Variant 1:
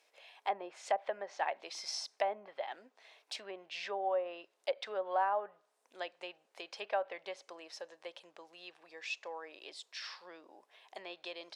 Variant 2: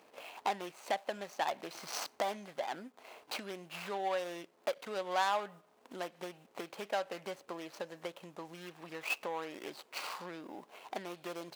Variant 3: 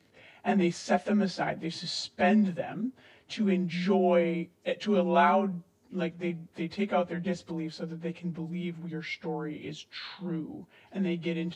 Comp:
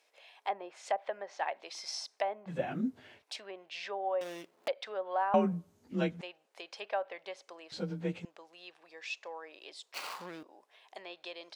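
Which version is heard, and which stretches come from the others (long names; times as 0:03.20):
1
0:02.51–0:03.19: punch in from 3, crossfade 0.10 s
0:04.21–0:04.68: punch in from 2
0:05.34–0:06.21: punch in from 3
0:07.72–0:08.25: punch in from 3
0:09.94–0:10.43: punch in from 2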